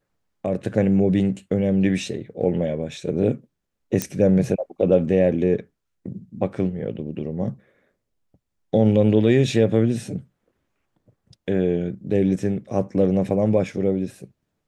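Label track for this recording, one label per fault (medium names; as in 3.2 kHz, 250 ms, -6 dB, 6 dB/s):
4.020000	4.020000	pop -7 dBFS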